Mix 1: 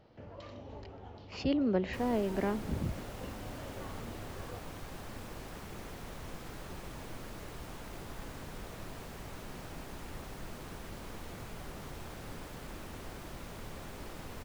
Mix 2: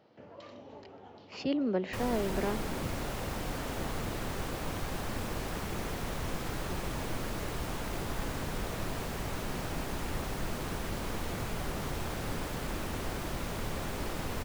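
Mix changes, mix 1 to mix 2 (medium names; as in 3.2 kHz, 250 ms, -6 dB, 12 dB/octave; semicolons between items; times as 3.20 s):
speech: add high-pass 180 Hz 12 dB/octave; background +9.0 dB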